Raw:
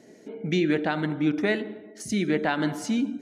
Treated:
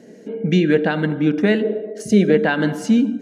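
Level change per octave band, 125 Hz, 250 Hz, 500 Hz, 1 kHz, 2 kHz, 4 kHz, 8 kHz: +10.0, +8.5, +10.5, +3.5, +6.5, +4.5, +2.5 dB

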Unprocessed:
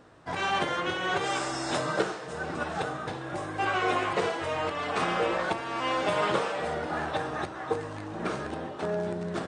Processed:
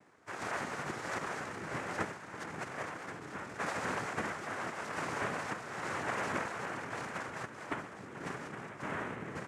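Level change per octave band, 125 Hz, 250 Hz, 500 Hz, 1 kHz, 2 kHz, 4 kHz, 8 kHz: -7.5, -8.5, -12.0, -9.5, -6.0, -13.5, -5.5 dB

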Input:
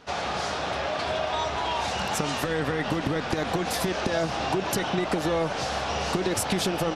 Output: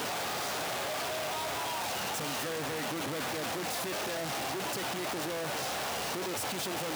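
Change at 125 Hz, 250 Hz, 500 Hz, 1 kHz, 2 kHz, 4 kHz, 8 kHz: -12.0, -10.5, -8.5, -7.0, -5.0, -4.5, -2.0 dB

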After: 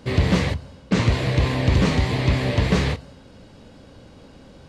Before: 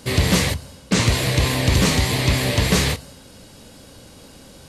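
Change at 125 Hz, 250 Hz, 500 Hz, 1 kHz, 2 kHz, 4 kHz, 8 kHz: 0.0, -0.5, -1.0, -2.0, -4.5, -8.0, -15.0 dB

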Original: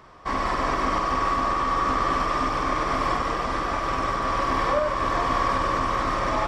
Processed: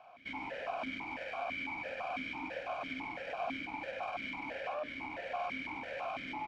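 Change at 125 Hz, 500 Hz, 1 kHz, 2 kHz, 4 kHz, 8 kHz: -24.5 dB, -13.5 dB, -18.5 dB, -10.0 dB, -13.0 dB, under -25 dB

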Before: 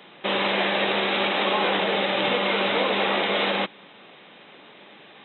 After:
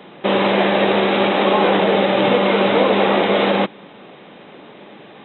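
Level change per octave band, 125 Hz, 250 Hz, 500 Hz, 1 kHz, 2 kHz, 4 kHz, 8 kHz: +11.5 dB, +11.5 dB, +9.5 dB, +7.0 dB, +3.0 dB, +1.5 dB, n/a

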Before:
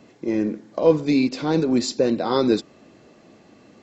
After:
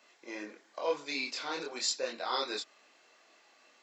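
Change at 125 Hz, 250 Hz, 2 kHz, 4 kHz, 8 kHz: -35.0 dB, -25.5 dB, -3.5 dB, -3.0 dB, n/a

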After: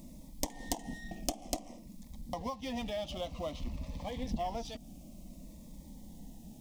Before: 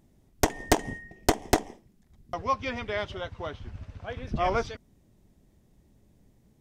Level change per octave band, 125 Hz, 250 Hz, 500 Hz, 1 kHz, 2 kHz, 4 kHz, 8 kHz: -8.0, -6.5, -9.5, -11.5, -15.5, -6.5, -6.5 dB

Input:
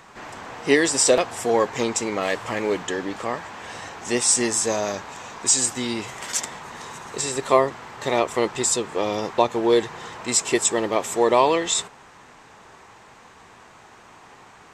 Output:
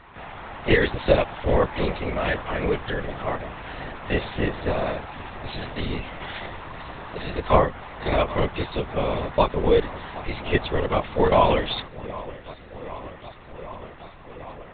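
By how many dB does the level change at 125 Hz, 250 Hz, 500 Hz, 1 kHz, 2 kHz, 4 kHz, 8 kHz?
+9.5 dB, -2.0 dB, -1.0 dB, -1.0 dB, -0.5 dB, -5.0 dB, under -40 dB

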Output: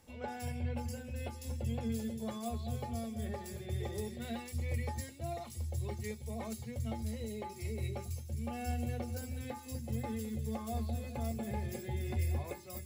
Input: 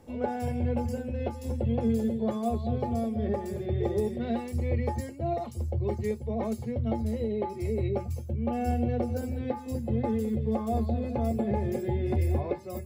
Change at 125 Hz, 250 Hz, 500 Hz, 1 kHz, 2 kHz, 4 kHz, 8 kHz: -7.0, -11.0, -13.0, -9.5, -2.5, +1.0, +3.5 dB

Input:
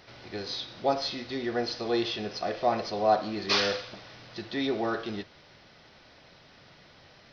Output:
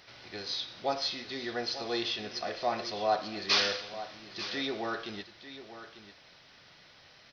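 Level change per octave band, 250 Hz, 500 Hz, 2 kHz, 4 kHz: -7.0, -5.5, -1.0, +0.5 dB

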